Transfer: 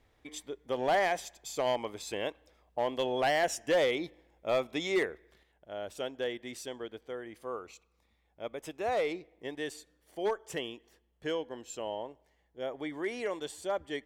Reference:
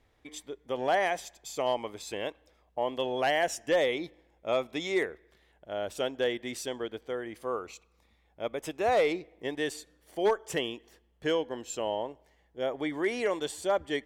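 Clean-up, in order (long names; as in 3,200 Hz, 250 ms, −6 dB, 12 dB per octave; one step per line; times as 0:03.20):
clipped peaks rebuilt −22 dBFS
level 0 dB, from 0:05.43 +5.5 dB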